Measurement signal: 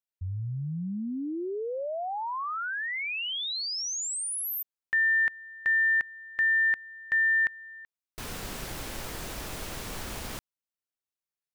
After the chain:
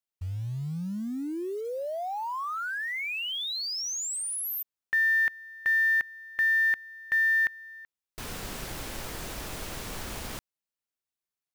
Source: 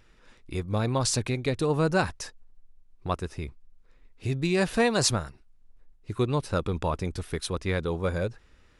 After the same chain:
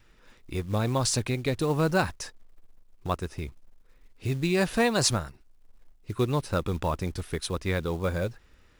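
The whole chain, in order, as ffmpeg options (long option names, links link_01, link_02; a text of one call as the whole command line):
ffmpeg -i in.wav -af "adynamicequalizer=threshold=0.00631:dfrequency=440:dqfactor=6.9:tfrequency=440:tqfactor=6.9:attack=5:release=100:ratio=0.375:range=2:mode=cutabove:tftype=bell,acrusher=bits=6:mode=log:mix=0:aa=0.000001" out.wav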